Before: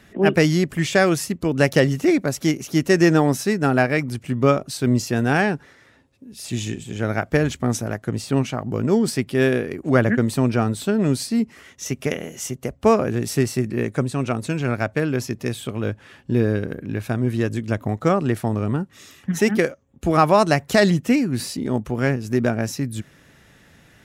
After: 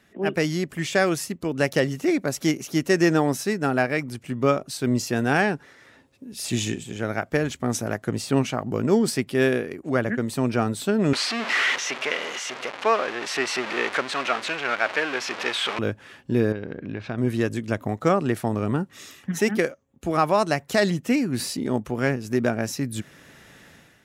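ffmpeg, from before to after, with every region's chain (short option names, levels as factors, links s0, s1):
-filter_complex "[0:a]asettb=1/sr,asplit=3[s0][s1][s2];[s0]atrim=end=11.134[s3];[s1]atrim=start=11.13:end=15.79,asetpts=PTS-STARTPTS,afade=t=in:d=0.004:c=qsin,afade=t=out:st=4.656:d=0.004:c=qsin,aeval=exprs='val(0)+0.5*0.0841*sgn(val(0))':c=same,highpass=330,lowpass=2800,tiltshelf=f=710:g=-8.5[s4];[s2]atrim=start=15.786[s5];[s3][s4]acrossfade=d=0.004:c1=hsin:c2=qsin[s6];[s6][s5]acrossfade=d=0.004:c1=qsin:c2=hsin,asettb=1/sr,asplit=3[s7][s8][s9];[s7]atrim=end=16.524[s10];[s8]atrim=start=16.52:end=17.18,asetpts=PTS-STARTPTS,afade=t=in:d=0.004:c=qsin,afade=t=out:st=0.656:d=0.004:c=qsin,lowpass=f=4700:w=0.5412,lowpass=f=4700:w=1.3066,acompressor=threshold=0.0447:ratio=2.5:attack=3.2:release=140:knee=1:detection=peak[s11];[s9]atrim=start=17.176[s12];[s10][s11]acrossfade=d=0.004:c1=hsin:c2=qsin[s13];[s13][s12]acrossfade=d=0.004:c1=qsin:c2=hsin,lowshelf=f=130:g=-9,dynaudnorm=f=100:g=7:m=3.76,volume=0.422"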